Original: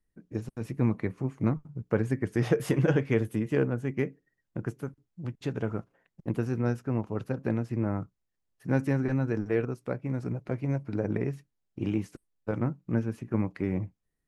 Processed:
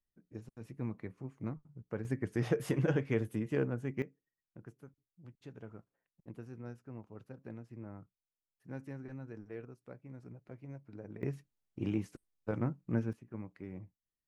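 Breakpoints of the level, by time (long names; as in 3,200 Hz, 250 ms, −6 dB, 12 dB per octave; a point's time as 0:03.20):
−13 dB
from 0:02.05 −6.5 dB
from 0:04.02 −18 dB
from 0:11.23 −5 dB
from 0:13.13 −16 dB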